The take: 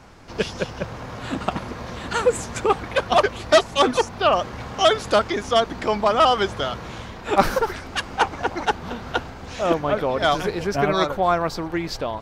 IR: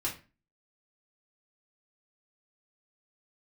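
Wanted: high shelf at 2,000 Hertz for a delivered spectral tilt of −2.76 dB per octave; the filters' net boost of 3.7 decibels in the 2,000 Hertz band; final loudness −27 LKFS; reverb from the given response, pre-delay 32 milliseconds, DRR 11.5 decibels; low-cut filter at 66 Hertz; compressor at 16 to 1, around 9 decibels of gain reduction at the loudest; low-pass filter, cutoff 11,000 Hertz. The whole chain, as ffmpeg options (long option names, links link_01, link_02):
-filter_complex "[0:a]highpass=66,lowpass=11000,highshelf=frequency=2000:gain=-4,equalizer=frequency=2000:width_type=o:gain=7.5,acompressor=threshold=-18dB:ratio=16,asplit=2[link_01][link_02];[1:a]atrim=start_sample=2205,adelay=32[link_03];[link_02][link_03]afir=irnorm=-1:irlink=0,volume=-15.5dB[link_04];[link_01][link_04]amix=inputs=2:normalize=0,volume=-1.5dB"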